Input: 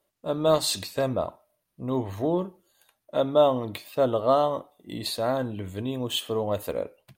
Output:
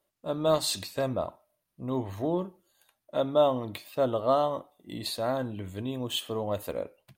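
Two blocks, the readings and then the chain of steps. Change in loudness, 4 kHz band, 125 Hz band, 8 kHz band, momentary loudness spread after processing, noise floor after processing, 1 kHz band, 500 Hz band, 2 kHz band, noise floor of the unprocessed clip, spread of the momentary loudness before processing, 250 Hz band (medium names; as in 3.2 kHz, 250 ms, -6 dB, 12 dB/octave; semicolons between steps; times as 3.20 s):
-3.5 dB, -3.0 dB, -3.0 dB, -3.0 dB, 12 LU, -82 dBFS, -3.0 dB, -3.5 dB, -3.0 dB, -79 dBFS, 12 LU, -3.0 dB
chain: peaking EQ 450 Hz -3 dB 0.24 oct; trim -3 dB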